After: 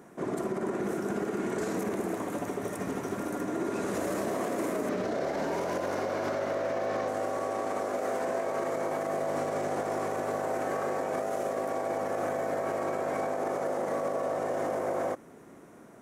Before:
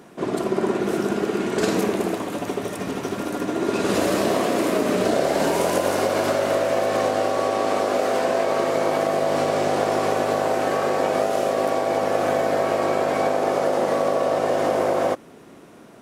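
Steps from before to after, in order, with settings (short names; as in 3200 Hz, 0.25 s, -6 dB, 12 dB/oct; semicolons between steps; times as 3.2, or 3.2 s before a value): 4.89–7.08 resonant high shelf 6500 Hz -9 dB, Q 1.5; limiter -17 dBFS, peak gain reduction 9.5 dB; band shelf 3600 Hz -8 dB 1.2 oct; gain -5.5 dB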